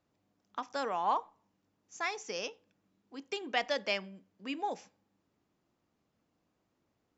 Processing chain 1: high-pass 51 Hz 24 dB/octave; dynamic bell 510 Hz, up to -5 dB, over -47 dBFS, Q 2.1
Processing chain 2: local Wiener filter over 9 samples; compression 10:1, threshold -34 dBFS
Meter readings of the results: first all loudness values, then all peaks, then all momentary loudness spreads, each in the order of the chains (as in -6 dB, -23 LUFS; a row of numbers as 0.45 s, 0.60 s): -37.0 LUFS, -41.5 LUFS; -15.0 dBFS, -22.0 dBFS; 16 LU, 10 LU